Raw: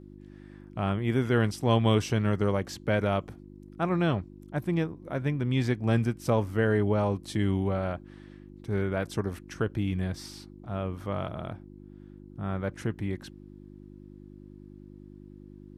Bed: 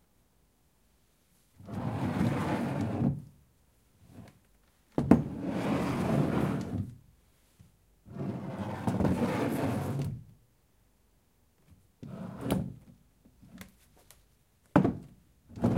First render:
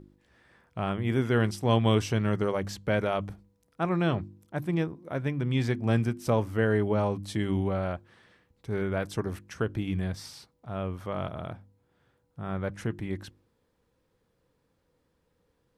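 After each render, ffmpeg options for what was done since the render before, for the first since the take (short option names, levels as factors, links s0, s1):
-af "bandreject=f=50:t=h:w=4,bandreject=f=100:t=h:w=4,bandreject=f=150:t=h:w=4,bandreject=f=200:t=h:w=4,bandreject=f=250:t=h:w=4,bandreject=f=300:t=h:w=4,bandreject=f=350:t=h:w=4"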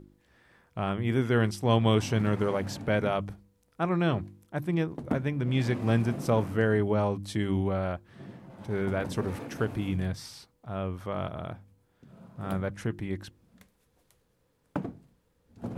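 -filter_complex "[1:a]volume=0.335[s0];[0:a][s0]amix=inputs=2:normalize=0"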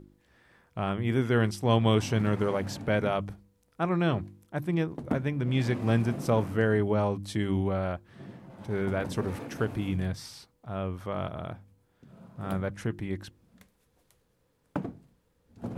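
-af anull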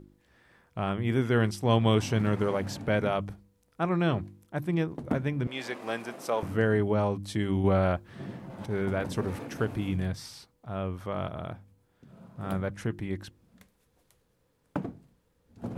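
-filter_complex "[0:a]asettb=1/sr,asplit=3[s0][s1][s2];[s0]atrim=end=5.474[s3];[s1]atrim=start=5.47:end=6.43,asetpts=PTS-STARTPTS,afade=t=in:d=0.004:c=qsin,afade=t=out:st=0.956:d=0.004:c=qsin,highpass=500[s4];[s2]atrim=start=6.426[s5];[s3][s4]acrossfade=d=0.004:c1=hsin:c2=qsin[s6];[s6][s5]acrossfade=d=0.004:c1=qsin:c2=hsin,asettb=1/sr,asplit=3[s7][s8][s9];[s7]atrim=end=7.644[s10];[s8]atrim=start=7.64:end=8.66,asetpts=PTS-STARTPTS,afade=t=in:d=0.004:c=qsin,afade=t=out:st=1.016:d=0.004:c=qsin,acontrast=38[s11];[s9]atrim=start=8.656[s12];[s10][s11]acrossfade=d=0.004:c1=hsin:c2=qsin[s13];[s13][s12]acrossfade=d=0.004:c1=qsin:c2=hsin"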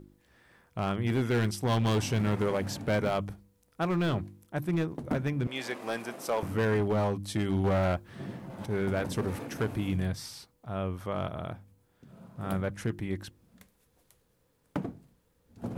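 -af "asoftclip=type=hard:threshold=0.075,crystalizer=i=0.5:c=0"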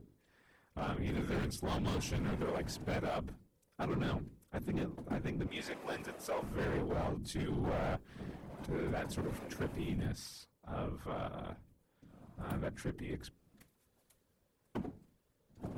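-af "afftfilt=real='hypot(re,im)*cos(2*PI*random(0))':imag='hypot(re,im)*sin(2*PI*random(1))':win_size=512:overlap=0.75,asoftclip=type=tanh:threshold=0.0335"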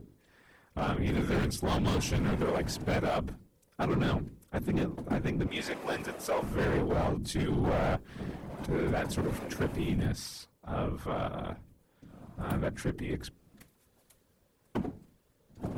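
-af "volume=2.24"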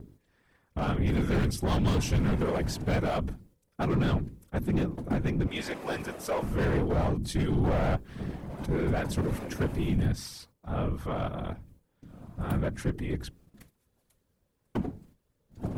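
-af "lowshelf=f=170:g=6.5,agate=range=0.398:threshold=0.00158:ratio=16:detection=peak"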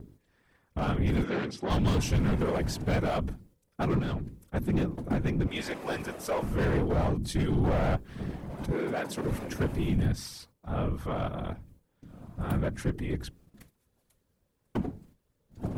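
-filter_complex "[0:a]asplit=3[s0][s1][s2];[s0]afade=t=out:st=1.23:d=0.02[s3];[s1]highpass=250,lowpass=4400,afade=t=in:st=1.23:d=0.02,afade=t=out:st=1.69:d=0.02[s4];[s2]afade=t=in:st=1.69:d=0.02[s5];[s3][s4][s5]amix=inputs=3:normalize=0,asettb=1/sr,asplit=3[s6][s7][s8];[s6]atrim=end=3.994[s9];[s7]atrim=start=3.99:end=4.44,asetpts=PTS-STARTPTS,afade=t=in:d=0.004:c=qsin,afade=t=out:st=0.446:d=0.004:c=qsin,acompressor=threshold=0.0251:ratio=2:attack=3.2:release=140:knee=1:detection=peak[s10];[s8]atrim=start=4.436[s11];[s9][s10]acrossfade=d=0.004:c1=hsin:c2=qsin[s12];[s12][s11]acrossfade=d=0.004:c1=qsin:c2=hsin,asettb=1/sr,asplit=3[s13][s14][s15];[s13]atrim=end=8.724[s16];[s14]atrim=start=8.72:end=9.25,asetpts=PTS-STARTPTS,afade=t=in:d=0.004:c=qsin,afade=t=out:st=0.526:d=0.004:c=qsin,highpass=260[s17];[s15]atrim=start=9.246[s18];[s16][s17]acrossfade=d=0.004:c1=hsin:c2=qsin[s19];[s19][s18]acrossfade=d=0.004:c1=qsin:c2=hsin"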